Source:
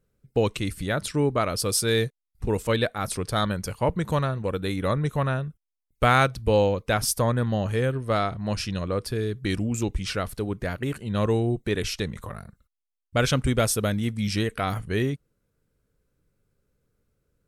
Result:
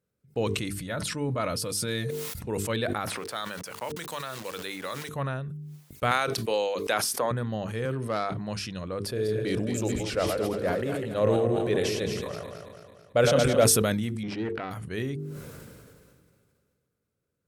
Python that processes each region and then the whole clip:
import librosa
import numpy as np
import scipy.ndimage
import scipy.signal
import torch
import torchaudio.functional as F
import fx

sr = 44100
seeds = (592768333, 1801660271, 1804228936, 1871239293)

y = fx.chain(x, sr, fx.notch_comb(f0_hz=390.0),
    fx.sustainer(db_per_s=21.0), at=(0.8, 2.46))
y = fx.chain(y, sr, fx.highpass(hz=1100.0, slope=6),
    fx.quant_dither(seeds[0], bits=8, dither='none'),
    fx.band_squash(depth_pct=100), at=(3.07, 5.09))
y = fx.chain(y, sr, fx.highpass(hz=380.0, slope=12),
    fx.band_squash(depth_pct=100), at=(6.11, 7.31))
y = fx.chain(y, sr, fx.self_delay(depth_ms=0.058),
    fx.highpass(hz=130.0, slope=12),
    fx.env_flatten(amount_pct=50), at=(7.85, 8.33))
y = fx.chain(y, sr, fx.reverse_delay_fb(ms=110, feedback_pct=67, wet_db=-6),
    fx.peak_eq(hz=540.0, db=11.0, octaves=0.82), at=(9.06, 13.64))
y = fx.chain(y, sr, fx.halfwave_gain(db=-12.0),
    fx.lowpass(hz=2900.0, slope=12),
    fx.peak_eq(hz=320.0, db=7.5, octaves=1.1), at=(14.23, 14.71))
y = scipy.signal.sosfilt(scipy.signal.butter(2, 93.0, 'highpass', fs=sr, output='sos'), y)
y = fx.hum_notches(y, sr, base_hz=50, count=9)
y = fx.sustainer(y, sr, db_per_s=27.0)
y = F.gain(torch.from_numpy(y), -6.0).numpy()